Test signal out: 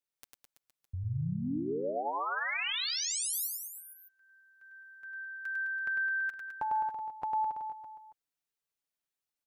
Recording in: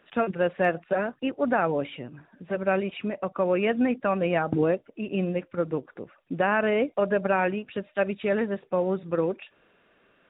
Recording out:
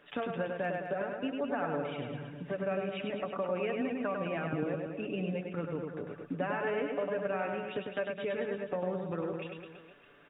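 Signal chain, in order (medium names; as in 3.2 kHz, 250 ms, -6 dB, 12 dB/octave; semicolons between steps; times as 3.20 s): comb 6.9 ms, depth 50%; compression 3:1, threshold -36 dBFS; on a send: reverse bouncing-ball echo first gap 100 ms, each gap 1.1×, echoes 5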